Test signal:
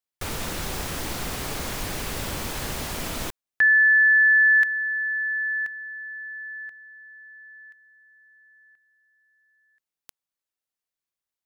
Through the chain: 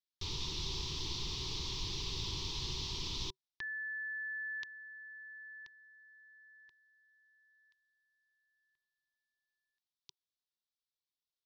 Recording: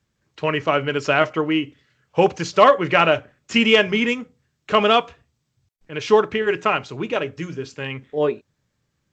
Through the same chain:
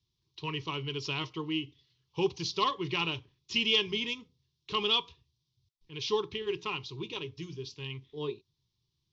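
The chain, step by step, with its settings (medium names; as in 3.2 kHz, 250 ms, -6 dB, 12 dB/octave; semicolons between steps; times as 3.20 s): FFT filter 140 Hz 0 dB, 240 Hz -12 dB, 380 Hz -1 dB, 630 Hz -28 dB, 980 Hz -2 dB, 1.5 kHz -22 dB, 3.6 kHz +8 dB, 5.7 kHz +4 dB, 9.3 kHz -28 dB; trim -7.5 dB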